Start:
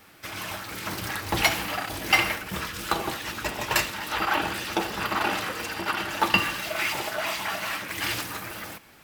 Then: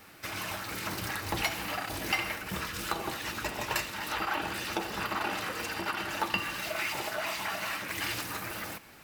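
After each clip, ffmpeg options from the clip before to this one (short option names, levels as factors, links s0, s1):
-af "acompressor=threshold=0.02:ratio=2,bandreject=f=3300:w=23"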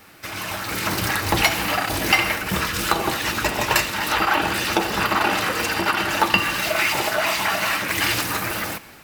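-af "dynaudnorm=f=250:g=5:m=2.37,volume=1.78"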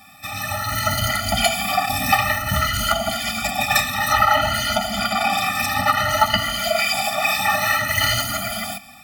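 -af "afftfilt=real='re*pow(10,14/40*sin(2*PI*(1.8*log(max(b,1)*sr/1024/100)/log(2)-(0.56)*(pts-256)/sr)))':imag='im*pow(10,14/40*sin(2*PI*(1.8*log(max(b,1)*sr/1024/100)/log(2)-(0.56)*(pts-256)/sr)))':win_size=1024:overlap=0.75,equalizer=f=170:w=5.2:g=-9,afftfilt=real='re*eq(mod(floor(b*sr/1024/290),2),0)':imag='im*eq(mod(floor(b*sr/1024/290),2),0)':win_size=1024:overlap=0.75,volume=1.33"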